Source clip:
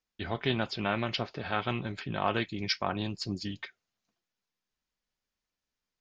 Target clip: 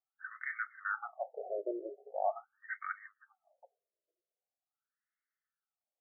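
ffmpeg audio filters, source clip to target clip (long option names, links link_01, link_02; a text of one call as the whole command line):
ffmpeg -i in.wav -af "asuperstop=centerf=1000:order=4:qfactor=2.4,afftfilt=real='re*between(b*sr/1024,460*pow(1600/460,0.5+0.5*sin(2*PI*0.43*pts/sr))/1.41,460*pow(1600/460,0.5+0.5*sin(2*PI*0.43*pts/sr))*1.41)':imag='im*between(b*sr/1024,460*pow(1600/460,0.5+0.5*sin(2*PI*0.43*pts/sr))/1.41,460*pow(1600/460,0.5+0.5*sin(2*PI*0.43*pts/sr))*1.41)':win_size=1024:overlap=0.75,volume=1.5dB" out.wav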